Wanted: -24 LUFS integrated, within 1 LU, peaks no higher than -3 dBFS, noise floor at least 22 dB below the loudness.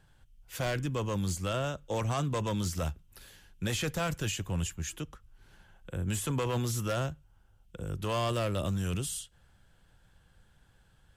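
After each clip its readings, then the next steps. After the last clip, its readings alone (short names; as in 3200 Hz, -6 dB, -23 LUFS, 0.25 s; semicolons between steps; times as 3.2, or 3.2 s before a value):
clipped 1.0%; flat tops at -25.0 dBFS; loudness -33.5 LUFS; peak -25.0 dBFS; loudness target -24.0 LUFS
-> clip repair -25 dBFS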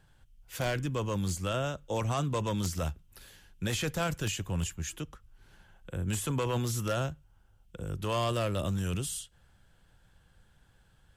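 clipped 0.0%; loudness -33.0 LUFS; peak -16.0 dBFS; loudness target -24.0 LUFS
-> gain +9 dB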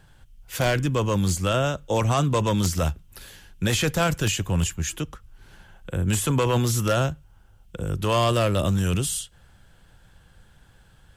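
loudness -24.0 LUFS; peak -7.0 dBFS; noise floor -56 dBFS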